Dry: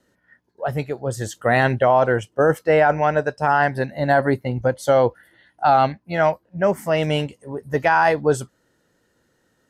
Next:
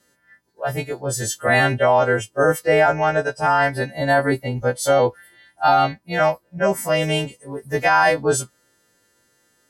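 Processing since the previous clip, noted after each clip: partials quantised in pitch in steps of 2 st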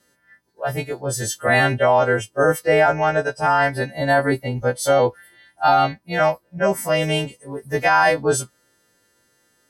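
band-stop 7.2 kHz, Q 16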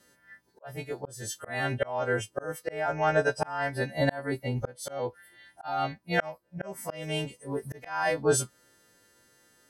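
slow attack 788 ms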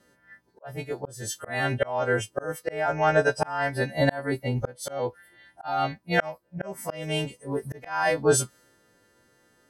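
tape noise reduction on one side only decoder only; trim +3.5 dB

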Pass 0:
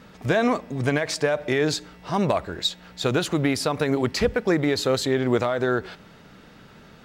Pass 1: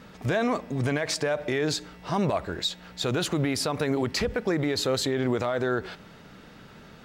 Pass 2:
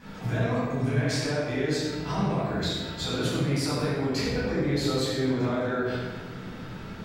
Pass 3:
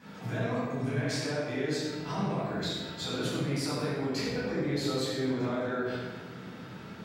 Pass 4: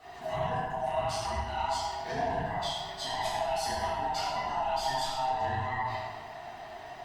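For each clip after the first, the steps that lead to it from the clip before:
peak limiter -17 dBFS, peak gain reduction 8.5 dB
compression, threshold -32 dBFS, peak gain reduction 10.5 dB; reverberation RT60 1.5 s, pre-delay 9 ms, DRR -10 dB; trim -6.5 dB
high-pass 120 Hz 12 dB/octave; trim -4 dB
split-band scrambler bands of 500 Hz; Opus 48 kbps 48 kHz

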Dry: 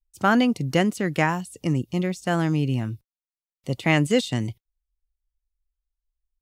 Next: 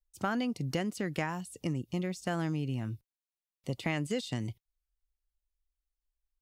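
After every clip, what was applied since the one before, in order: dynamic bell 4.9 kHz, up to +4 dB, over -49 dBFS, Q 4.3; compression 4:1, threshold -25 dBFS, peak gain reduction 9.5 dB; trim -5 dB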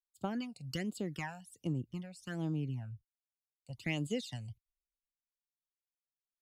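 phase shifter stages 12, 1.3 Hz, lowest notch 330–2000 Hz; three bands expanded up and down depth 100%; trim -4 dB

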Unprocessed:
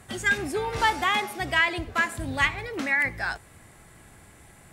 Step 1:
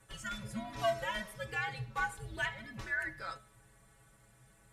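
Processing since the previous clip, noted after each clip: inharmonic resonator 76 Hz, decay 0.26 s, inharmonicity 0.008; de-hum 136.3 Hz, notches 34; frequency shift -200 Hz; trim -4 dB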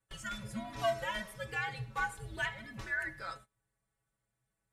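gate -52 dBFS, range -22 dB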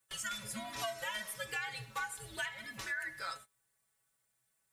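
tilt EQ +3 dB/octave; compression 6:1, threshold -37 dBFS, peak gain reduction 10 dB; trim +1.5 dB

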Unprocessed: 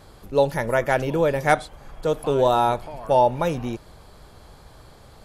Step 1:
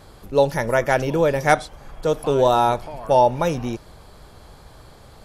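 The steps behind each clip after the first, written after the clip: dynamic bell 5.6 kHz, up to +7 dB, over -59 dBFS, Q 4.5; trim +2 dB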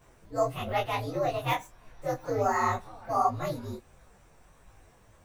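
frequency axis rescaled in octaves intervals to 122%; detune thickener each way 51 cents; trim -4.5 dB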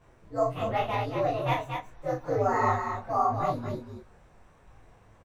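low-pass 2.5 kHz 6 dB/octave; on a send: loudspeakers at several distances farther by 13 m -6 dB, 80 m -5 dB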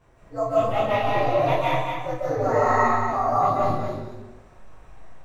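reverberation RT60 0.90 s, pre-delay 110 ms, DRR -5 dB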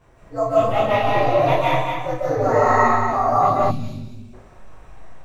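time-frequency box 3.71–4.34 s, 280–2200 Hz -16 dB; trim +4 dB

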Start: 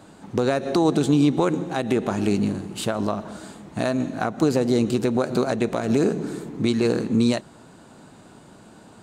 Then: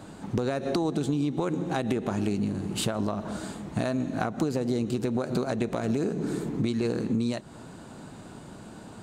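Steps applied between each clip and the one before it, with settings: bass shelf 180 Hz +5.5 dB; compression, threshold -26 dBFS, peak gain reduction 13 dB; trim +1.5 dB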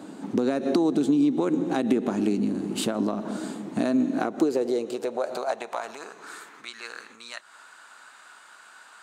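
high-pass sweep 260 Hz -> 1.4 kHz, 4.02–6.47 s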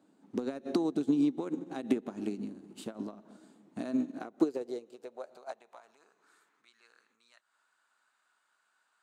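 upward expansion 2.5:1, over -32 dBFS; trim -3 dB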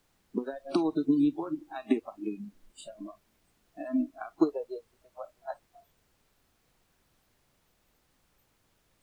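dynamic bell 1.1 kHz, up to +4 dB, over -50 dBFS, Q 1.3; added noise pink -47 dBFS; spectral noise reduction 26 dB; trim +2.5 dB

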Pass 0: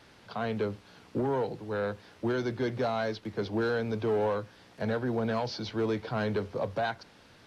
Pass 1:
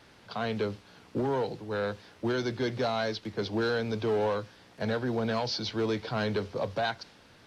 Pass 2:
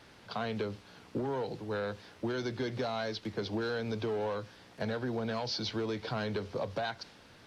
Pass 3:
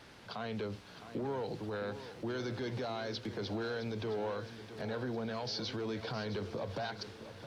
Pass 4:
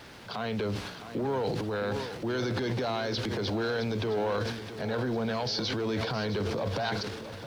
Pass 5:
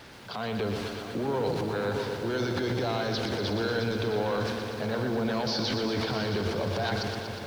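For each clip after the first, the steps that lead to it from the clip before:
dynamic bell 4.6 kHz, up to +7 dB, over -55 dBFS, Q 0.75
compression, threshold -31 dBFS, peak gain reduction 6.5 dB
peak limiter -32 dBFS, peak gain reduction 8.5 dB; bit-crushed delay 664 ms, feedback 55%, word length 12-bit, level -12 dB; trim +1 dB
transient shaper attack -2 dB, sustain +10 dB; word length cut 12-bit, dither none; trim +7 dB
bit-crushed delay 120 ms, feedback 80%, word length 9-bit, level -7 dB

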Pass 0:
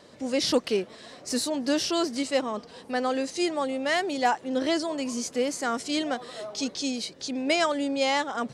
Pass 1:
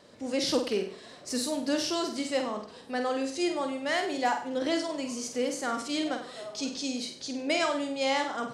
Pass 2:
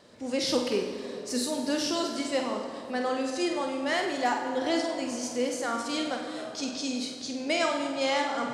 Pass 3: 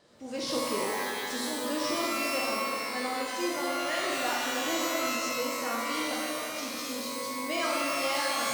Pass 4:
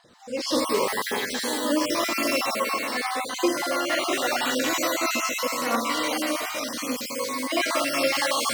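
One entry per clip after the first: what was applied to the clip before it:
short-mantissa float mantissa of 8-bit; on a send: flutter echo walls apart 8.3 m, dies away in 0.46 s; on the sum: trim -4 dB
plate-style reverb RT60 3.1 s, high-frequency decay 0.55×, DRR 5 dB
pitch-shifted reverb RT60 1.7 s, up +12 st, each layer -2 dB, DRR -1 dB; trim -7 dB
random holes in the spectrogram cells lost 26%; phaser 0.87 Hz, delay 3.5 ms, feedback 38%; trim +6 dB

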